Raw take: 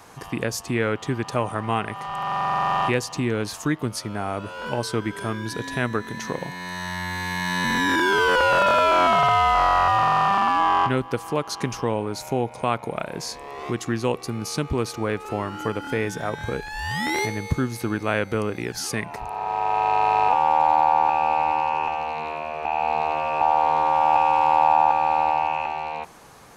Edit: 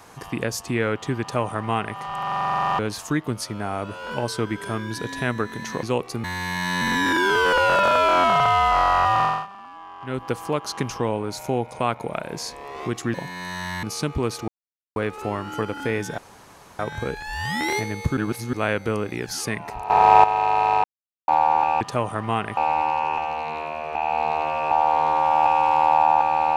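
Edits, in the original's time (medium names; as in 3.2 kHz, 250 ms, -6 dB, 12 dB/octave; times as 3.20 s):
1.21–1.97 s: copy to 21.27 s
2.79–3.34 s: delete
6.38–7.07 s: swap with 13.97–14.38 s
10.06–11.08 s: dip -21.5 dB, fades 0.24 s
15.03 s: insert silence 0.48 s
16.25 s: insert room tone 0.61 s
17.63–17.99 s: reverse
19.36–19.70 s: gain +12 dB
20.30–20.74 s: mute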